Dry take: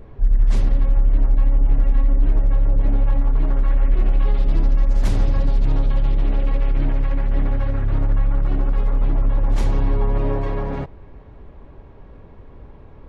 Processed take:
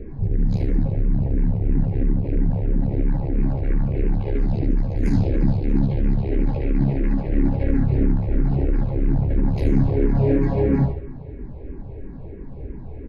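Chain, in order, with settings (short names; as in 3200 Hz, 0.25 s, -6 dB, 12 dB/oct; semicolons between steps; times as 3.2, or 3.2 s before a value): overloaded stage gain 16.5 dB; early reflections 15 ms -16 dB, 73 ms -7 dB; reverb RT60 1.0 s, pre-delay 3 ms, DRR 11 dB; endless phaser -3 Hz; gain -3 dB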